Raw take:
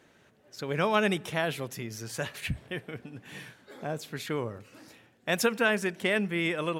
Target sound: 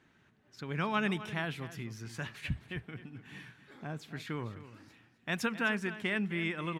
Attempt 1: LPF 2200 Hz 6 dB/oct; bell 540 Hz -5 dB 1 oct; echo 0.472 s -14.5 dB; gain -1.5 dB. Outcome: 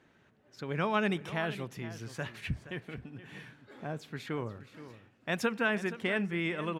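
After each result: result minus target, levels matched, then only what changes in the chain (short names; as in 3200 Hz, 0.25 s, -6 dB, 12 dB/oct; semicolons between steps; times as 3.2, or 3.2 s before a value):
echo 0.213 s late; 500 Hz band +4.0 dB
change: echo 0.259 s -14.5 dB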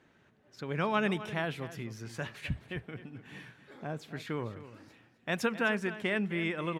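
500 Hz band +4.0 dB
change: bell 540 Hz -12.5 dB 1 oct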